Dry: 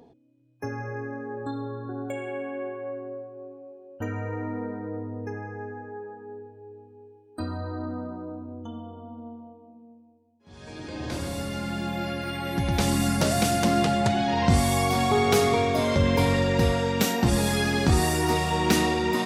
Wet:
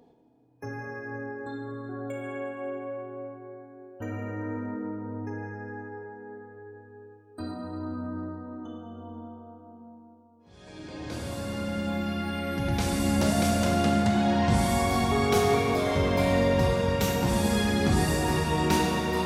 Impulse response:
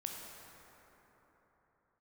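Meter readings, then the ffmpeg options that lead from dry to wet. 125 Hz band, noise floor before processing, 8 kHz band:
-2.0 dB, -56 dBFS, -4.0 dB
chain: -filter_complex "[1:a]atrim=start_sample=2205[s0];[0:a][s0]afir=irnorm=-1:irlink=0,volume=0.794"

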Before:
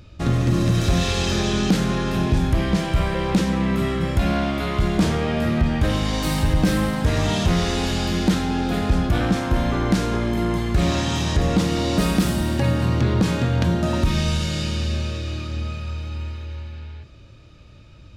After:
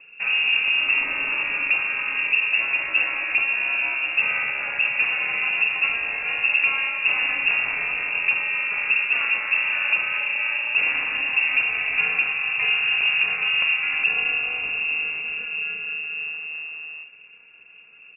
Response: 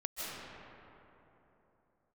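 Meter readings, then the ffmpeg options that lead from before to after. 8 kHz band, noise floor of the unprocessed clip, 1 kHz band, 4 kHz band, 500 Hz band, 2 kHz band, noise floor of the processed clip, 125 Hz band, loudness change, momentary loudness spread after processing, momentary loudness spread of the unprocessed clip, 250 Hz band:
under -40 dB, -45 dBFS, -7.0 dB, no reading, -17.5 dB, +12.5 dB, -48 dBFS, under -30 dB, +1.0 dB, 8 LU, 8 LU, under -25 dB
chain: -filter_complex "[0:a]asplit=2[s0][s1];[s1]adelay=50,volume=0.211[s2];[s0][s2]amix=inputs=2:normalize=0,aeval=exprs='val(0)*sin(2*PI*130*n/s)':c=same,lowpass=f=2400:t=q:w=0.5098,lowpass=f=2400:t=q:w=0.6013,lowpass=f=2400:t=q:w=0.9,lowpass=f=2400:t=q:w=2.563,afreqshift=-2800"

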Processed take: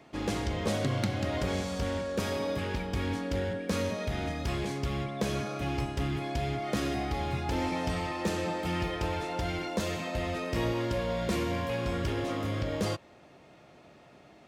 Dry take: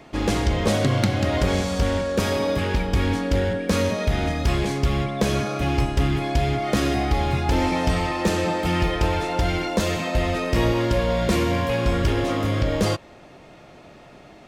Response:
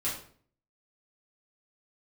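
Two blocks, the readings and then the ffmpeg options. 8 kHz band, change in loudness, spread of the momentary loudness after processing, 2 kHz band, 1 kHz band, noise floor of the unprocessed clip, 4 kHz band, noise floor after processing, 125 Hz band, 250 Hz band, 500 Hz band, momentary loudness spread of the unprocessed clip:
-9.0 dB, -9.5 dB, 3 LU, -9.0 dB, -9.0 dB, -47 dBFS, -9.0 dB, -56 dBFS, -10.0 dB, -9.0 dB, -9.0 dB, 2 LU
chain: -af "highpass=67,volume=0.355"

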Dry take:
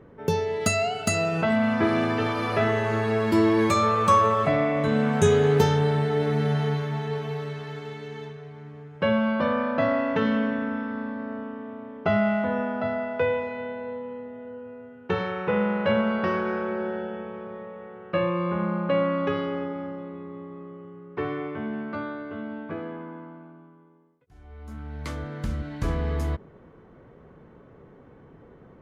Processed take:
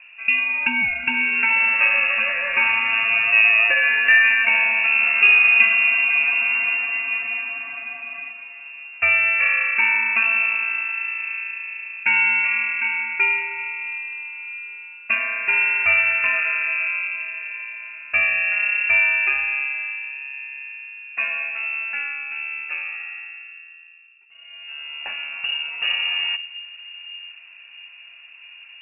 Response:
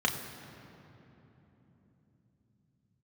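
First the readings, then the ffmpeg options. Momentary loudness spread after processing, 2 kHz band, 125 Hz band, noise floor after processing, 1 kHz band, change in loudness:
19 LU, +17.0 dB, under -25 dB, -44 dBFS, -4.5 dB, +7.5 dB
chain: -filter_complex "[0:a]bandreject=f=50:t=h:w=6,bandreject=f=100:t=h:w=6,bandreject=f=150:t=h:w=6,asplit=2[s0][s1];[1:a]atrim=start_sample=2205,asetrate=26019,aresample=44100[s2];[s1][s2]afir=irnorm=-1:irlink=0,volume=0.0447[s3];[s0][s3]amix=inputs=2:normalize=0,lowpass=f=2500:t=q:w=0.5098,lowpass=f=2500:t=q:w=0.6013,lowpass=f=2500:t=q:w=0.9,lowpass=f=2500:t=q:w=2.563,afreqshift=-2900,volume=1.58"

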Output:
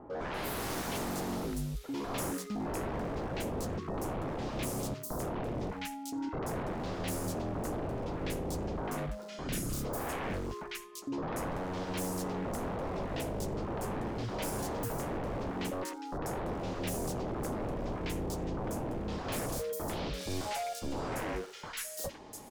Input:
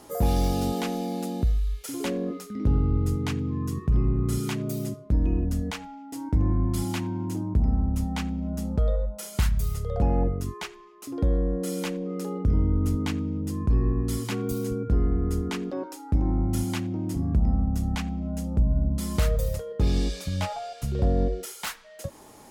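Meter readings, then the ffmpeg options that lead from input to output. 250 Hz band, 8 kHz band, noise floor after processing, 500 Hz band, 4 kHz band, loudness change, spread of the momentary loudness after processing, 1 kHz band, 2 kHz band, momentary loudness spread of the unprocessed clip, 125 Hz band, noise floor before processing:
-9.0 dB, -2.0 dB, -45 dBFS, -3.5 dB, -4.5 dB, -9.5 dB, 3 LU, -1.0 dB, -1.5 dB, 8 LU, -13.5 dB, -47 dBFS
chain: -filter_complex "[0:a]aeval=exprs='0.0299*(abs(mod(val(0)/0.0299+3,4)-2)-1)':c=same,acrossover=split=1400|4600[s0][s1][s2];[s1]adelay=100[s3];[s2]adelay=340[s4];[s0][s3][s4]amix=inputs=3:normalize=0"

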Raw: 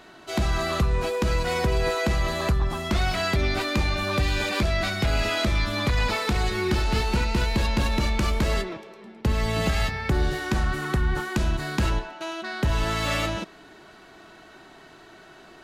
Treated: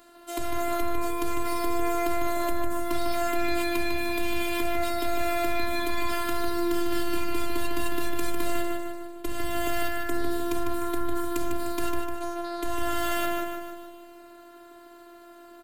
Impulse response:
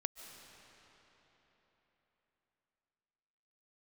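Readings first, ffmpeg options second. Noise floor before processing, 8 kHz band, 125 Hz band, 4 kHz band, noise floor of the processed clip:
-49 dBFS, -0.5 dB, -18.0 dB, -7.5 dB, -49 dBFS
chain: -filter_complex "[0:a]acontrast=71,aexciter=amount=4.7:drive=4:freq=7900,afftfilt=real='hypot(re,im)*cos(PI*b)':imag='0':win_size=512:overlap=0.75,asplit=2[s0][s1];[s1]aecho=0:1:151|302|453|604|755|906|1057:0.531|0.287|0.155|0.0836|0.0451|0.0244|0.0132[s2];[s0][s2]amix=inputs=2:normalize=0,volume=0.355"

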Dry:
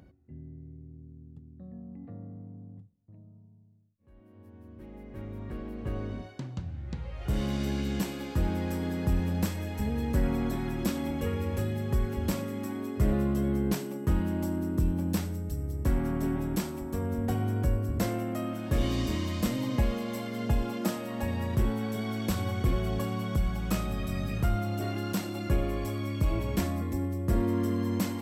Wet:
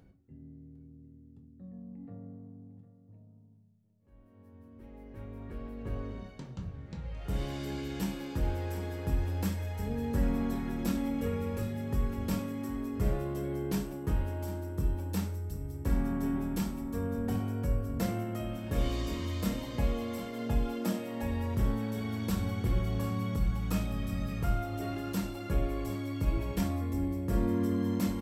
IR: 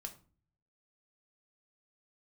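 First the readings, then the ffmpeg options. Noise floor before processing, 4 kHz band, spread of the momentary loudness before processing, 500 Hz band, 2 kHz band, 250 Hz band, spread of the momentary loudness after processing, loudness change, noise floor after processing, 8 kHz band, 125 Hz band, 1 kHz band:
-54 dBFS, -4.5 dB, 16 LU, -3.0 dB, -4.0 dB, -2.5 dB, 15 LU, -3.0 dB, -57 dBFS, -4.0 dB, -3.5 dB, -3.5 dB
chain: -filter_complex "[0:a]aecho=1:1:755:0.188[s0];[1:a]atrim=start_sample=2205,afade=t=out:st=0.17:d=0.01,atrim=end_sample=7938[s1];[s0][s1]afir=irnorm=-1:irlink=0"

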